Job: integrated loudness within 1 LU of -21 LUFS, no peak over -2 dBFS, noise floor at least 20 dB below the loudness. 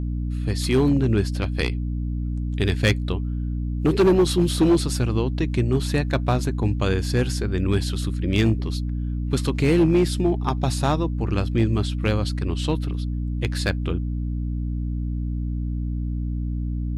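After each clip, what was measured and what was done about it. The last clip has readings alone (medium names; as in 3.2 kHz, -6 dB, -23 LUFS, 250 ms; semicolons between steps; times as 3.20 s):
clipped samples 1.0%; clipping level -12.0 dBFS; hum 60 Hz; highest harmonic 300 Hz; hum level -23 dBFS; loudness -23.5 LUFS; peak level -12.0 dBFS; loudness target -21.0 LUFS
-> clip repair -12 dBFS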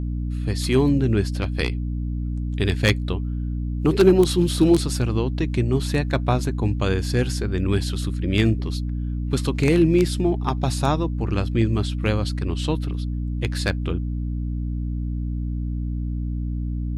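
clipped samples 0.0%; hum 60 Hz; highest harmonic 300 Hz; hum level -23 dBFS
-> de-hum 60 Hz, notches 5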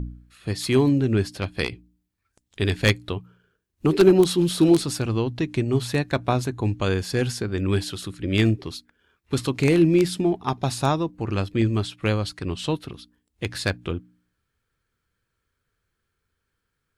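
hum not found; loudness -23.0 LUFS; peak level -2.0 dBFS; loudness target -21.0 LUFS
-> trim +2 dB; peak limiter -2 dBFS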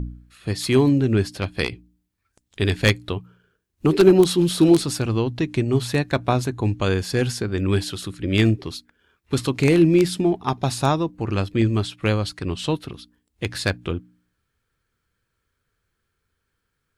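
loudness -21.0 LUFS; peak level -2.0 dBFS; noise floor -76 dBFS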